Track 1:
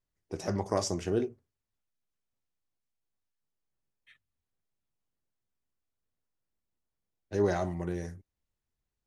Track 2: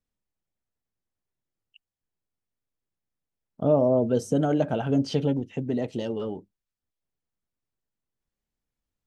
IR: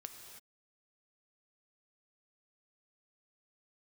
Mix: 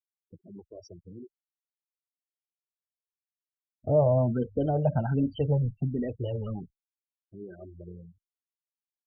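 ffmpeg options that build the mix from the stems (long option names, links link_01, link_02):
-filter_complex "[0:a]highshelf=frequency=6900:gain=9,alimiter=limit=-24dB:level=0:latency=1:release=255,acrusher=bits=4:mode=log:mix=0:aa=0.000001,volume=-5dB,asplit=3[link_01][link_02][link_03];[link_02]volume=-19dB[link_04];[1:a]acrossover=split=3000[link_05][link_06];[link_06]acompressor=threshold=-48dB:ratio=4:attack=1:release=60[link_07];[link_05][link_07]amix=inputs=2:normalize=0,asubboost=boost=8:cutoff=100,aeval=exprs='val(0)+0.00158*(sin(2*PI*60*n/s)+sin(2*PI*2*60*n/s)/2+sin(2*PI*3*60*n/s)/3+sin(2*PI*4*60*n/s)/4+sin(2*PI*5*60*n/s)/5)':channel_layout=same,adelay=250,volume=0.5dB[link_08];[link_03]apad=whole_len=410962[link_09];[link_08][link_09]sidechaincompress=threshold=-50dB:ratio=8:attack=16:release=390[link_10];[link_04]aecho=0:1:487:1[link_11];[link_01][link_10][link_11]amix=inputs=3:normalize=0,afftfilt=real='re*gte(hypot(re,im),0.0282)':imag='im*gte(hypot(re,im),0.0282)':win_size=1024:overlap=0.75,asplit=2[link_12][link_13];[link_13]afreqshift=1.3[link_14];[link_12][link_14]amix=inputs=2:normalize=1"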